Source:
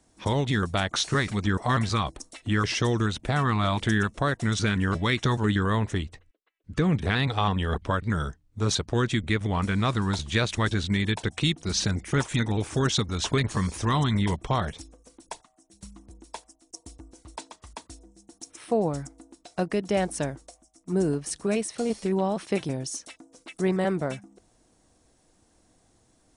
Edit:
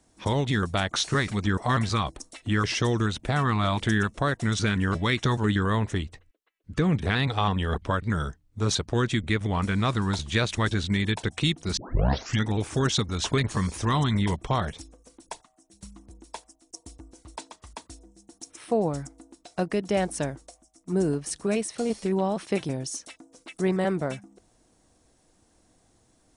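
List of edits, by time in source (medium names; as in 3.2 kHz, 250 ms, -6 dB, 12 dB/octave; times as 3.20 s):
11.77 s: tape start 0.68 s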